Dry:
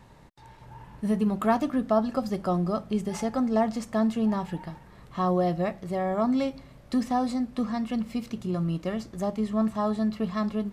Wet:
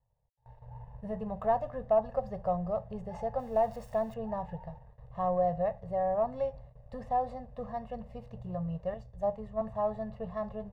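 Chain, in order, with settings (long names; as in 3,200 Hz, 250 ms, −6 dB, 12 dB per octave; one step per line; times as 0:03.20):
0:03.39–0:04.14: spike at every zero crossing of −25 dBFS
dynamic equaliser 1,400 Hz, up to +4 dB, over −39 dBFS, Q 0.87
leveller curve on the samples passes 1
comb filter 1.1 ms, depth 64%
noise gate with hold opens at −34 dBFS
drawn EQ curve 120 Hz 0 dB, 320 Hz −29 dB, 470 Hz +8 dB, 1,000 Hz −12 dB, 10,000 Hz −30 dB
0:08.94–0:09.61: multiband upward and downward expander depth 70%
level −4 dB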